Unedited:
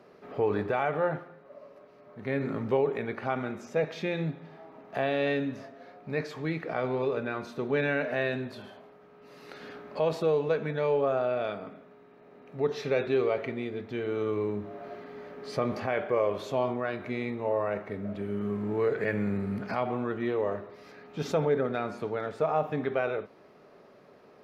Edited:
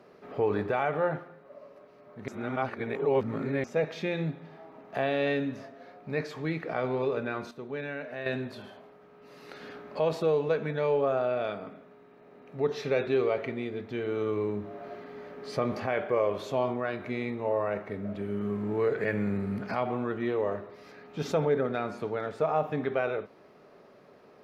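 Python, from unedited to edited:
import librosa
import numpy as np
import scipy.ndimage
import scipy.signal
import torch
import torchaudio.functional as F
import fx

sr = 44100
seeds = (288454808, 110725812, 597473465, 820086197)

y = fx.edit(x, sr, fx.reverse_span(start_s=2.28, length_s=1.36),
    fx.clip_gain(start_s=7.51, length_s=0.75, db=-8.5), tone=tone)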